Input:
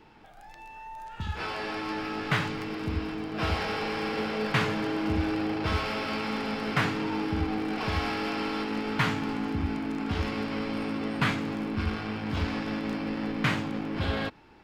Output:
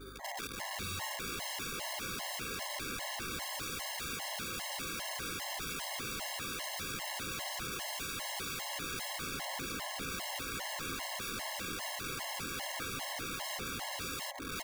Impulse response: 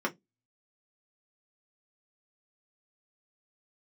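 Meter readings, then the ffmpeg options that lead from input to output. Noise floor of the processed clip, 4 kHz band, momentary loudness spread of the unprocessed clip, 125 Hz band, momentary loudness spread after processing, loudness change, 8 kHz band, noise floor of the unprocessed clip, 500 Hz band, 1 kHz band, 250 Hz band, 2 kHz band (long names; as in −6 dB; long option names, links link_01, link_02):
−42 dBFS, −1.5 dB, 5 LU, −17.0 dB, 1 LU, −7.5 dB, +12.0 dB, −50 dBFS, −12.5 dB, −8.5 dB, −18.5 dB, −7.0 dB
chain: -filter_complex "[0:a]highpass=350,equalizer=frequency=790:width_type=q:width=4:gain=10,equalizer=frequency=3100:width_type=q:width=4:gain=-4,equalizer=frequency=4800:width_type=q:width=4:gain=8,lowpass=frequency=8500:width=0.5412,lowpass=frequency=8500:width=1.3066,aecho=1:1:7.5:0.6,aecho=1:1:1113|2226|3339|4452|5565|6678:0.178|0.105|0.0619|0.0365|0.0215|0.0127,acrusher=samples=16:mix=1:aa=0.000001,acontrast=30,asplit=2[link_01][link_02];[1:a]atrim=start_sample=2205,asetrate=48510,aresample=44100,lowpass=7700[link_03];[link_02][link_03]afir=irnorm=-1:irlink=0,volume=-7.5dB[link_04];[link_01][link_04]amix=inputs=2:normalize=0,acompressor=threshold=-31dB:ratio=3,aeval=exprs='val(0)+0.00251*(sin(2*PI*50*n/s)+sin(2*PI*2*50*n/s)/2+sin(2*PI*3*50*n/s)/3+sin(2*PI*4*50*n/s)/4+sin(2*PI*5*50*n/s)/5)':channel_layout=same,acrusher=bits=5:mode=log:mix=0:aa=0.000001,aeval=exprs='(mod(39.8*val(0)+1,2)-1)/39.8':channel_layout=same,equalizer=frequency=460:width_type=o:width=0.36:gain=-3,afftfilt=real='re*gt(sin(2*PI*2.5*pts/sr)*(1-2*mod(floor(b*sr/1024/550),2)),0)':imag='im*gt(sin(2*PI*2.5*pts/sr)*(1-2*mod(floor(b*sr/1024/550),2)),0)':win_size=1024:overlap=0.75"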